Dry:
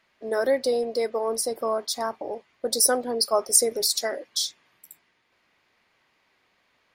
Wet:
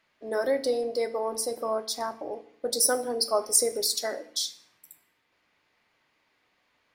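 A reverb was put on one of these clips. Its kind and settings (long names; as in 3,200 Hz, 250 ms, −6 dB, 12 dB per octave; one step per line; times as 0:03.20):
feedback delay network reverb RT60 0.61 s, low-frequency decay 1.45×, high-frequency decay 0.85×, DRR 10 dB
level −3.5 dB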